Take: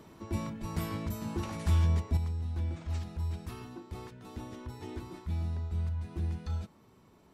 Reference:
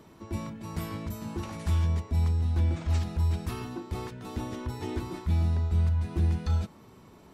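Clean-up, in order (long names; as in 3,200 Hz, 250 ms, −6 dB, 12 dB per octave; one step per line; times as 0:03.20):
0:00.60–0:00.72: high-pass filter 140 Hz 24 dB per octave
level 0 dB, from 0:02.17 +8 dB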